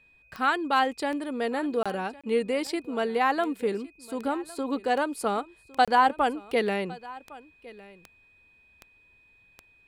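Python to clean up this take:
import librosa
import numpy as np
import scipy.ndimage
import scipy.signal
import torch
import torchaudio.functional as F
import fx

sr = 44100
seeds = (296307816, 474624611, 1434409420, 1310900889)

y = fx.fix_declick_ar(x, sr, threshold=10.0)
y = fx.notch(y, sr, hz=2500.0, q=30.0)
y = fx.fix_interpolate(y, sr, at_s=(1.83, 2.21, 5.85), length_ms=26.0)
y = fx.fix_echo_inverse(y, sr, delay_ms=1108, level_db=-20.5)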